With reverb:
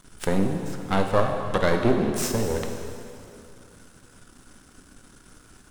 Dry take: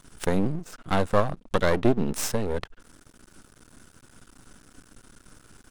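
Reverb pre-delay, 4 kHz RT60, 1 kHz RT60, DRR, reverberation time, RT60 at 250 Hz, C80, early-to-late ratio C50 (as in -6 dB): 5 ms, 2.5 s, 2.7 s, 3.0 dB, 2.7 s, 2.7 s, 5.5 dB, 4.5 dB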